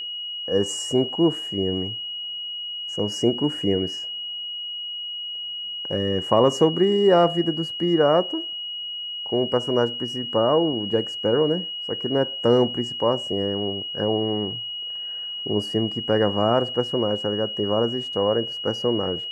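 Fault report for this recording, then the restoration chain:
whine 2.9 kHz -29 dBFS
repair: band-stop 2.9 kHz, Q 30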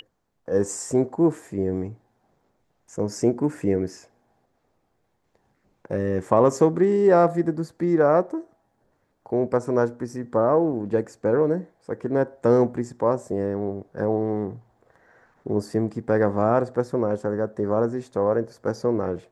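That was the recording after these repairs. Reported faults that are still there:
nothing left

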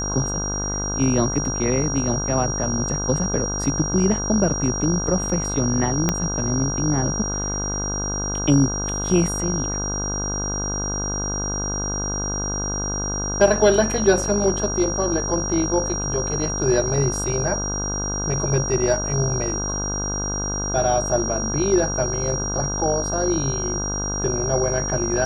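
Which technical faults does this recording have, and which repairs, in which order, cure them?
buzz 50 Hz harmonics 32 -28 dBFS
whine 5.7 kHz -26 dBFS
6.09 s: pop -5 dBFS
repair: de-click; de-hum 50 Hz, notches 32; band-stop 5.7 kHz, Q 30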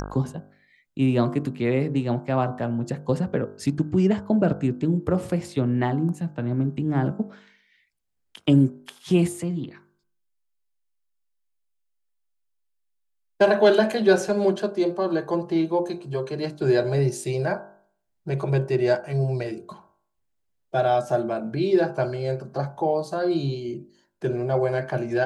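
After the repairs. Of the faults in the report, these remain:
6.09 s: pop

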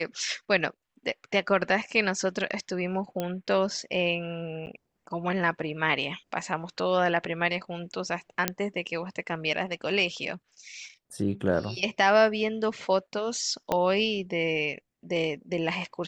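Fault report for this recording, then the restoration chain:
3.20 s: pop -16 dBFS
4.66–4.67 s: dropout 9.7 ms
8.48 s: pop -6 dBFS
13.72 s: pop -12 dBFS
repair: de-click; interpolate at 4.66 s, 9.7 ms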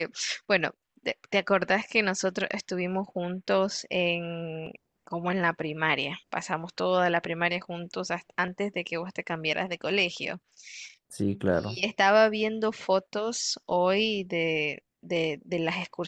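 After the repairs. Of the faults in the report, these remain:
13.72 s: pop

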